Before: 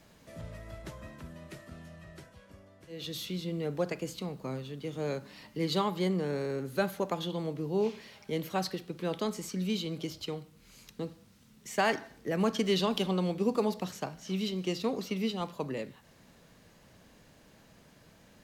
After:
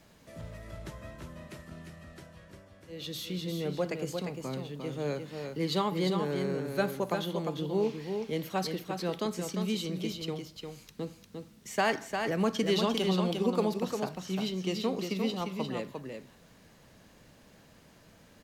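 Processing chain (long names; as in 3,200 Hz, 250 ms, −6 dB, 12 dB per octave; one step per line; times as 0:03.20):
single-tap delay 351 ms −5.5 dB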